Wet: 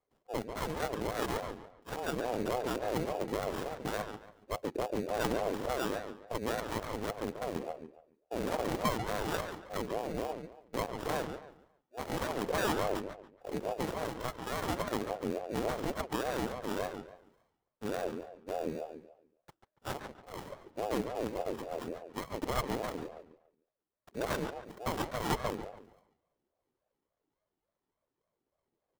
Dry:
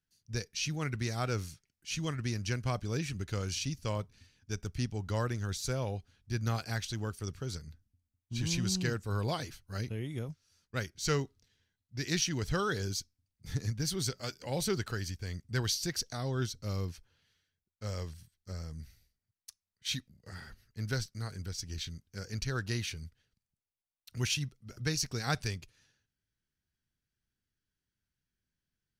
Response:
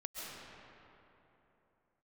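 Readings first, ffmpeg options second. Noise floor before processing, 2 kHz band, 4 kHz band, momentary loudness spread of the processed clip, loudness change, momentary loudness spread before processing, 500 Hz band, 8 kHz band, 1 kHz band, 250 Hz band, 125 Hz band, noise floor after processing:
under -85 dBFS, -1.0 dB, -6.5 dB, 11 LU, -1.0 dB, 13 LU, +5.5 dB, -9.0 dB, +7.0 dB, +0.5 dB, -10.0 dB, under -85 dBFS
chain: -filter_complex "[0:a]aphaser=in_gain=1:out_gain=1:delay=2.4:decay=0.59:speed=0.38:type=triangular,equalizer=f=1000:t=o:w=0.33:g=10,equalizer=f=1600:t=o:w=0.33:g=11,equalizer=f=6300:t=o:w=0.33:g=-6,acrossover=split=1500[s0][s1];[s0]asoftclip=type=hard:threshold=0.0355[s2];[s2][s1]amix=inputs=2:normalize=0,acrusher=samples=21:mix=1:aa=0.000001,aeval=exprs='0.141*(cos(1*acos(clip(val(0)/0.141,-1,1)))-cos(1*PI/2))+0.0158*(cos(8*acos(clip(val(0)/0.141,-1,1)))-cos(8*PI/2))':c=same,asplit=2[s3][s4];[s4]adelay=142,lowpass=f=3800:p=1,volume=0.447,asplit=2[s5][s6];[s6]adelay=142,lowpass=f=3800:p=1,volume=0.31,asplit=2[s7][s8];[s8]adelay=142,lowpass=f=3800:p=1,volume=0.31,asplit=2[s9][s10];[s10]adelay=142,lowpass=f=3800:p=1,volume=0.31[s11];[s5][s7][s9][s11]amix=inputs=4:normalize=0[s12];[s3][s12]amix=inputs=2:normalize=0,aeval=exprs='val(0)*sin(2*PI*470*n/s+470*0.35/3.5*sin(2*PI*3.5*n/s))':c=same,volume=0.841"

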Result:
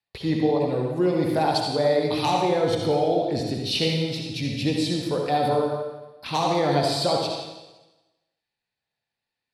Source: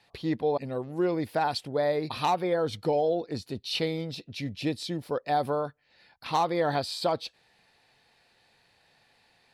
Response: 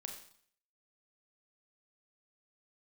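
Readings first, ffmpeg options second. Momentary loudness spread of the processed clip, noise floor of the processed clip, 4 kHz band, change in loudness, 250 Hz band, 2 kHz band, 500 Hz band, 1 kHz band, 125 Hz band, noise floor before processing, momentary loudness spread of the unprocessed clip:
7 LU, under -85 dBFS, +8.0 dB, +5.5 dB, +7.5 dB, +4.0 dB, +5.5 dB, +4.0 dB, +8.5 dB, -66 dBFS, 9 LU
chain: -filter_complex "[0:a]agate=range=0.0355:threshold=0.002:ratio=16:detection=peak,acrossover=split=380|1200|2100[s0][s1][s2][s3];[s1]flanger=delay=16.5:depth=6.7:speed=1.5[s4];[s2]acompressor=threshold=0.00178:ratio=6[s5];[s0][s4][s5][s3]amix=inputs=4:normalize=0[s6];[1:a]atrim=start_sample=2205,asetrate=22932,aresample=44100[s7];[s6][s7]afir=irnorm=-1:irlink=0,volume=2.24"

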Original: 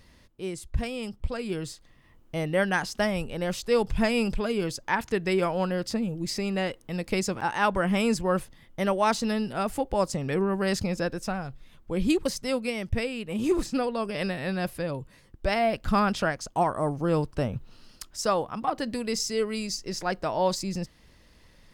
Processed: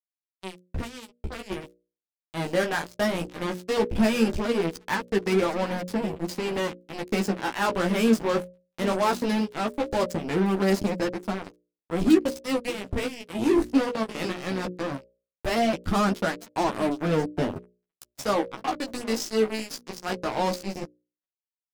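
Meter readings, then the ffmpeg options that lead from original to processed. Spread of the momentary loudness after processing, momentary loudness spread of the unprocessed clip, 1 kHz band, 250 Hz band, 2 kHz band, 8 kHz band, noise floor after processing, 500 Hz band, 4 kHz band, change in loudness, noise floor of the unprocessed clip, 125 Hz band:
14 LU, 9 LU, -0.5 dB, +2.5 dB, -0.5 dB, -2.5 dB, under -85 dBFS, +1.0 dB, 0.0 dB, +1.5 dB, -57 dBFS, -1.0 dB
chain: -af "aeval=exprs='val(0)+0.5*0.0224*sgn(val(0))':c=same,aecho=1:1:769|1538|2307:0.141|0.0579|0.0237,acrusher=bits=3:mix=0:aa=0.5,adynamicequalizer=threshold=0.0126:dfrequency=300:dqfactor=1.1:tfrequency=300:tqfactor=1.1:attack=5:release=100:ratio=0.375:range=4:mode=boostabove:tftype=bell,flanger=delay=9:depth=9.6:regen=-7:speed=0.18:shape=triangular,agate=range=0.0447:threshold=0.00141:ratio=16:detection=peak,bandreject=f=60:t=h:w=6,bandreject=f=120:t=h:w=6,bandreject=f=180:t=h:w=6,bandreject=f=240:t=h:w=6,bandreject=f=300:t=h:w=6,bandreject=f=360:t=h:w=6,bandreject=f=420:t=h:w=6,bandreject=f=480:t=h:w=6,bandreject=f=540:t=h:w=6,bandreject=f=600:t=h:w=6"

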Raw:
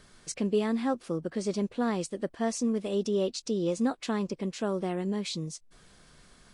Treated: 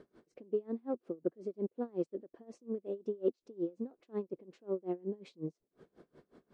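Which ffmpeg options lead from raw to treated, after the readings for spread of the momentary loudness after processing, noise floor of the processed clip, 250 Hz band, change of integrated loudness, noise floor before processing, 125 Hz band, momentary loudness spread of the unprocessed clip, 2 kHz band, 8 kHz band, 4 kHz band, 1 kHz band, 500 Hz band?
9 LU, under -85 dBFS, -10.5 dB, -8.5 dB, -59 dBFS, -13.0 dB, 6 LU, under -20 dB, under -30 dB, under -25 dB, -15.5 dB, -6.5 dB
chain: -af "areverse,acompressor=threshold=0.0141:ratio=8,areverse,aeval=exprs='0.0473*(cos(1*acos(clip(val(0)/0.0473,-1,1)))-cos(1*PI/2))+0.00531*(cos(3*acos(clip(val(0)/0.0473,-1,1)))-cos(3*PI/2))':c=same,bandpass=f=380:t=q:w=2.1:csg=0,aeval=exprs='val(0)*pow(10,-27*(0.5-0.5*cos(2*PI*5.5*n/s))/20)':c=same,volume=5.62"

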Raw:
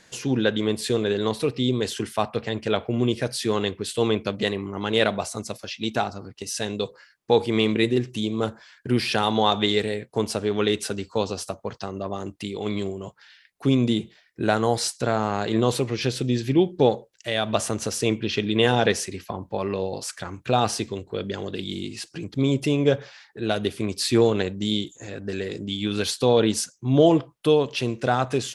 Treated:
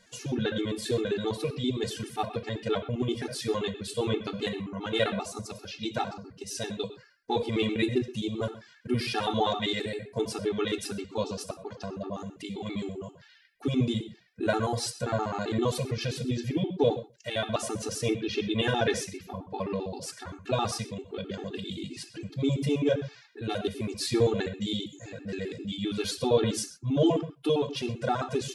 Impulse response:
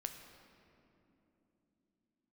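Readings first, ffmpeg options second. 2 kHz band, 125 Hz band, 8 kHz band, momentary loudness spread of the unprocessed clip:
-6.0 dB, -5.5 dB, -6.5 dB, 12 LU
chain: -filter_complex "[1:a]atrim=start_sample=2205,atrim=end_sample=6174[s0];[0:a][s0]afir=irnorm=-1:irlink=0,afftfilt=real='re*gt(sin(2*PI*7.6*pts/sr)*(1-2*mod(floor(b*sr/1024/230),2)),0)':imag='im*gt(sin(2*PI*7.6*pts/sr)*(1-2*mod(floor(b*sr/1024/230),2)),0)':win_size=1024:overlap=0.75"

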